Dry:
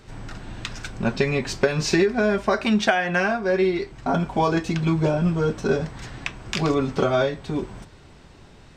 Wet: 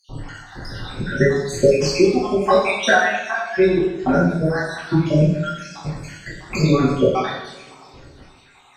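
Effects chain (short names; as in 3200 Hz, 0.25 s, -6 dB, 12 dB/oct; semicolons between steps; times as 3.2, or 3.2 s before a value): random spectral dropouts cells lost 78%; two-slope reverb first 0.84 s, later 3 s, from -24 dB, DRR -9 dB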